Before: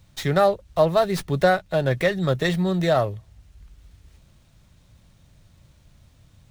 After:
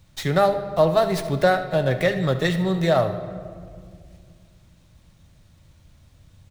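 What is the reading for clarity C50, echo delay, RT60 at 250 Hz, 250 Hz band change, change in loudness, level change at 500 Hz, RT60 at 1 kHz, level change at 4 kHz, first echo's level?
9.5 dB, 74 ms, 3.1 s, +0.5 dB, +0.5 dB, +0.5 dB, 1.8 s, +0.5 dB, -15.5 dB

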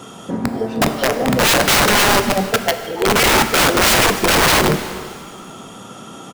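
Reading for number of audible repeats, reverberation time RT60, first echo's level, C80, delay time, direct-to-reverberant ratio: 1, 1.9 s, -21.5 dB, 10.5 dB, 305 ms, 8.0 dB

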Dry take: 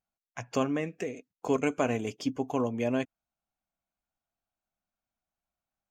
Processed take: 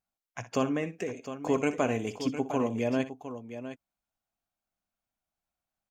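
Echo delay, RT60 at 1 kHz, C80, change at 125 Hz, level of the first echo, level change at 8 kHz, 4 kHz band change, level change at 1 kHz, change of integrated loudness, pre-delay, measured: 61 ms, no reverb, no reverb, +0.5 dB, -14.0 dB, +0.5 dB, +0.5 dB, +0.5 dB, 0.0 dB, no reverb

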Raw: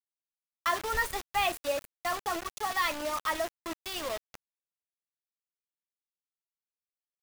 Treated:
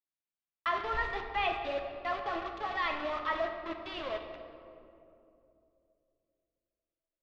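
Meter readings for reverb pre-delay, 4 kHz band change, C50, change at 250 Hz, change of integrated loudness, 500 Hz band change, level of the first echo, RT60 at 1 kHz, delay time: 3 ms, -5.5 dB, 5.5 dB, -1.0 dB, -2.5 dB, -1.0 dB, no echo, 2.4 s, no echo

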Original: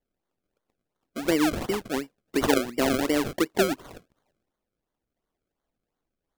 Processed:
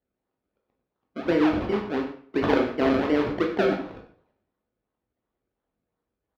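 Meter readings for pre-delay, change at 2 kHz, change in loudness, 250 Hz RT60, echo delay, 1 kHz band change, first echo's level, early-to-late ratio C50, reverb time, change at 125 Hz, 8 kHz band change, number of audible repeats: 13 ms, 0.0 dB, +1.5 dB, 0.50 s, 95 ms, +1.5 dB, -13.0 dB, 6.5 dB, 0.55 s, +2.0 dB, under -20 dB, 1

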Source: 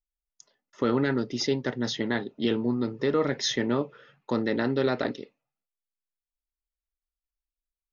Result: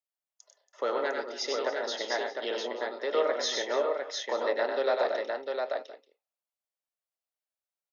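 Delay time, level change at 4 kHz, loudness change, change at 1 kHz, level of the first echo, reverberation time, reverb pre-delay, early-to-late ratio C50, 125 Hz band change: 96 ms, -1.0 dB, -3.0 dB, +2.5 dB, -5.0 dB, no reverb, no reverb, no reverb, under -35 dB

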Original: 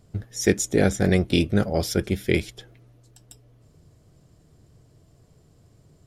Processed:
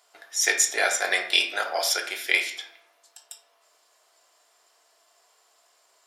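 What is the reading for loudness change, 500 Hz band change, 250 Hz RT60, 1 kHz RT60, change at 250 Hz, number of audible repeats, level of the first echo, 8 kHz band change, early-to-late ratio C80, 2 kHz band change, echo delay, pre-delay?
0.0 dB, -8.5 dB, 0.90 s, 0.60 s, -24.0 dB, no echo, no echo, +6.5 dB, 13.0 dB, +7.5 dB, no echo, 3 ms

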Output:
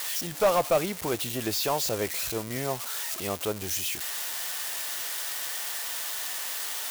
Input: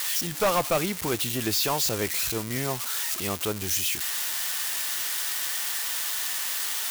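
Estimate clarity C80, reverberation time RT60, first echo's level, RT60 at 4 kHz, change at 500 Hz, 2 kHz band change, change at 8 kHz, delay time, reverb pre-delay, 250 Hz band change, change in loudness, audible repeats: no reverb, no reverb, no echo, no reverb, +1.5 dB, -3.5 dB, -4.0 dB, no echo, no reverb, -2.5 dB, -3.0 dB, no echo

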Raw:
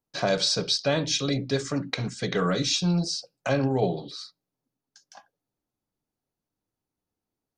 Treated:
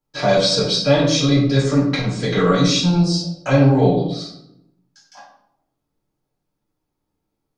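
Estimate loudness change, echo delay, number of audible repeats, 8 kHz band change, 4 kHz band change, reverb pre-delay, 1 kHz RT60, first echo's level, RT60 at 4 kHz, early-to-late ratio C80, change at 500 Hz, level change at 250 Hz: +9.0 dB, no echo, no echo, +4.0 dB, +6.0 dB, 3 ms, 0.70 s, no echo, 0.50 s, 8.0 dB, +9.5 dB, +11.5 dB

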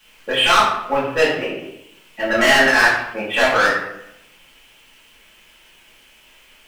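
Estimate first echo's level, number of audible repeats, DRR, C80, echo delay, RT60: no echo, no echo, -9.5 dB, 6.0 dB, no echo, 0.80 s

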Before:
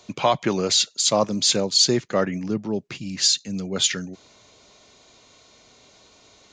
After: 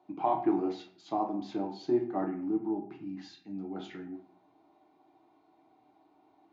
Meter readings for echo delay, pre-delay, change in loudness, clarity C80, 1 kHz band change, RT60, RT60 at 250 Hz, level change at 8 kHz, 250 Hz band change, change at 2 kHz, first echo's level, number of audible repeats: no echo, 6 ms, -12.5 dB, 12.5 dB, -6.0 dB, 0.50 s, 0.60 s, under -40 dB, -5.0 dB, -20.5 dB, no echo, no echo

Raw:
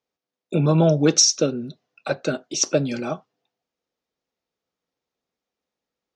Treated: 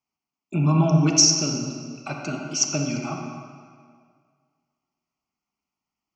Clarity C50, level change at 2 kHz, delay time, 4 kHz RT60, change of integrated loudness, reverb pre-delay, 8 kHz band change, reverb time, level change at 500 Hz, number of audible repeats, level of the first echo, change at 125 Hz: 2.5 dB, -2.0 dB, no echo, 1.5 s, -1.0 dB, 34 ms, +0.5 dB, 1.9 s, -9.0 dB, no echo, no echo, +1.0 dB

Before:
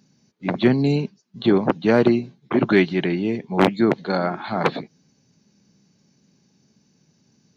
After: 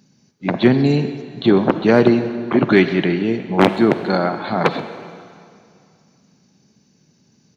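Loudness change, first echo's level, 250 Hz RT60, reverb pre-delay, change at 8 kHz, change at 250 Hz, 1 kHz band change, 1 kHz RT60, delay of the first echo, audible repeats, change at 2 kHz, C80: +4.0 dB, -19.0 dB, 2.2 s, 37 ms, no reading, +4.0 dB, +4.0 dB, 2.3 s, 131 ms, 1, +4.0 dB, 11.0 dB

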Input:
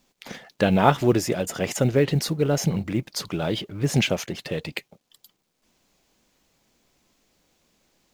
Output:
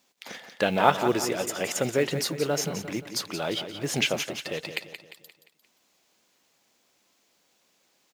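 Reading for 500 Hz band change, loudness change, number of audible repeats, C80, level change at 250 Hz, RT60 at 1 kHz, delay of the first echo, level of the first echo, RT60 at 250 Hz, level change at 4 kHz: -3.0 dB, -3.5 dB, 4, no reverb, -7.0 dB, no reverb, 175 ms, -10.0 dB, no reverb, +0.5 dB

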